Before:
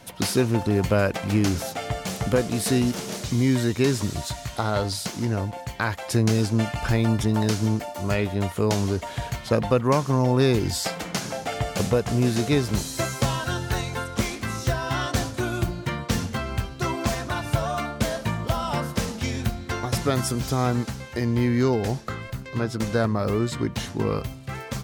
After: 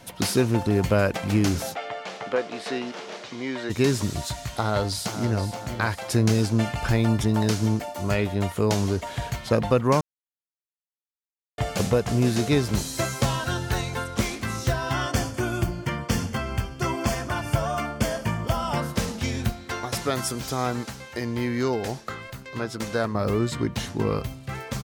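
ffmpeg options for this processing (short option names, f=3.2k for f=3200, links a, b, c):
-filter_complex "[0:a]asplit=3[a][b][c];[a]afade=t=out:st=1.74:d=0.02[d];[b]highpass=460,lowpass=3.3k,afade=t=in:st=1.74:d=0.02,afade=t=out:st=3.69:d=0.02[e];[c]afade=t=in:st=3.69:d=0.02[f];[d][e][f]amix=inputs=3:normalize=0,asplit=2[g][h];[h]afade=t=in:st=4.48:d=0.01,afade=t=out:st=5.39:d=0.01,aecho=0:1:480|960|1440|1920|2400:0.298538|0.149269|0.0746346|0.0373173|0.0186586[i];[g][i]amix=inputs=2:normalize=0,asettb=1/sr,asplit=3[j][k][l];[j]atrim=end=14.924[m];[k]atrim=start=14.92:end=18.77,asetpts=PTS-STARTPTS,afade=t=in:d=0.004:c=qsin,afade=t=out:st=3.846:d=0.004:c=qsin,asuperstop=centerf=3900:order=4:qfactor=6[n];[l]atrim=start=18.766[o];[m][n]acrossfade=d=0.004:c1=hsin:c2=qsin[p];[p][o]acrossfade=d=0.004:c1=qsin:c2=hsin,asettb=1/sr,asplit=3[q][r][s];[q]atrim=end=19.524[t];[r]atrim=start=19.52:end=23.15,asetpts=PTS-STARTPTS,afade=t=in:d=0.004:c=qsin,afade=t=out:st=3.626:d=0.004:c=qsin,lowshelf=f=250:g=-9.5[u];[s]atrim=start=23.146[v];[t][u]acrossfade=d=0.004:c1=hsin:c2=qsin[w];[w][v]acrossfade=d=0.004:c1=qsin:c2=hsin,asplit=3[x][y][z];[x]atrim=end=10.01,asetpts=PTS-STARTPTS,afade=t=out:st=10.006:d=0.004:c=hsin[aa];[y]atrim=start=10.01:end=11.58,asetpts=PTS-STARTPTS,volume=0[ab];[z]atrim=start=11.58,asetpts=PTS-STARTPTS,afade=t=in:d=0.004:c=hsin[ac];[aa][ab][ac]concat=n=3:v=0:a=1"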